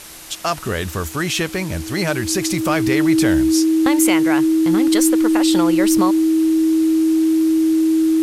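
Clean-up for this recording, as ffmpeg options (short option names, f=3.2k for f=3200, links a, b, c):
-af "bandreject=f=320:w=30,afwtdn=0.016"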